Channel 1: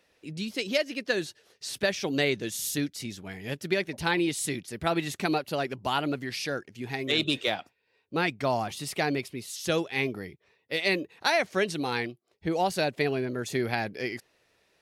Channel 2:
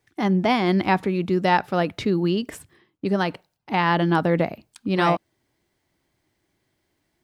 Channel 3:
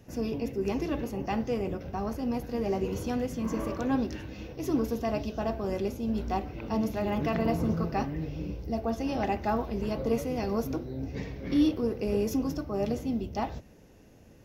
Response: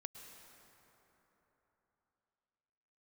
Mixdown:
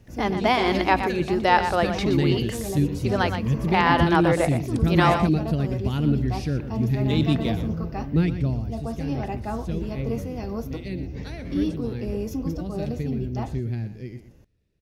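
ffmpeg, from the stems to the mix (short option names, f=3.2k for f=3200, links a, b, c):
-filter_complex "[0:a]asubboost=boost=12:cutoff=240,volume=-7dB,afade=t=out:st=8.19:d=0.46:silence=0.316228,asplit=2[a][b];[b]volume=-11.5dB[c];[1:a]highpass=420,volume=1dB,asplit=2[d][e];[e]volume=-8.5dB[f];[2:a]volume=-3.5dB[g];[c][f]amix=inputs=2:normalize=0,aecho=0:1:120:1[h];[a][d][g][h]amix=inputs=4:normalize=0,lowshelf=f=140:g=11"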